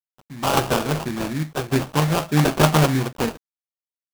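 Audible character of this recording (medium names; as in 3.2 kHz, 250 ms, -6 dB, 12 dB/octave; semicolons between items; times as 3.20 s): a quantiser's noise floor 8-bit, dither none; random-step tremolo; aliases and images of a low sample rate 2 kHz, jitter 20%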